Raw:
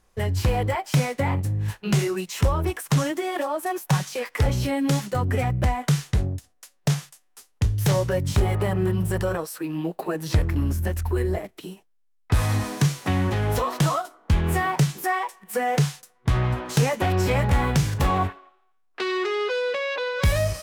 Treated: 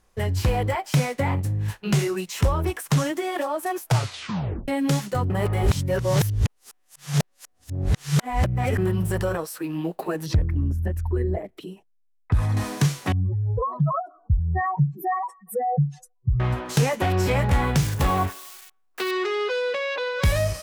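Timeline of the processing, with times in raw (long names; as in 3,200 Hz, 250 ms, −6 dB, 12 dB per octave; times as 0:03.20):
0:03.80: tape stop 0.88 s
0:05.30–0:08.78: reverse
0:10.26–0:12.57: spectral envelope exaggerated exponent 1.5
0:13.12–0:16.40: expanding power law on the bin magnitudes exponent 3.3
0:17.76–0:19.11: spike at every zero crossing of −29 dBFS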